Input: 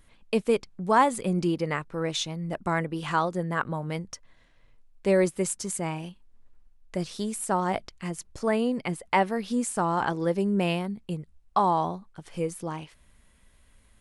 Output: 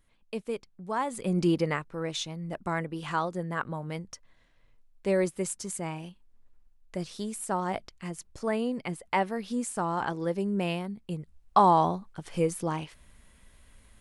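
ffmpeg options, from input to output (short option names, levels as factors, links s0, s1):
-af "volume=2.99,afade=t=in:st=1.04:d=0.52:silence=0.237137,afade=t=out:st=1.56:d=0.29:silence=0.473151,afade=t=in:st=11.03:d=0.58:silence=0.446684"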